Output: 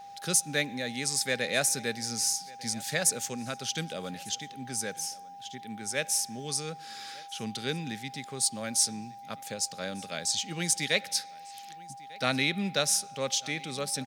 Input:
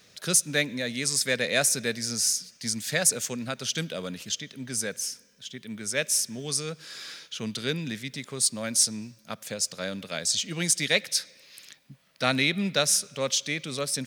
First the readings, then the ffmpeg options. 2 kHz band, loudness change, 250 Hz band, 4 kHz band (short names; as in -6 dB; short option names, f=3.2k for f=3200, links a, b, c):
-3.5 dB, -3.5 dB, -3.5 dB, -3.5 dB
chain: -af "aecho=1:1:1197:0.0708,aeval=exprs='val(0)+0.01*sin(2*PI*800*n/s)':c=same,volume=-3.5dB"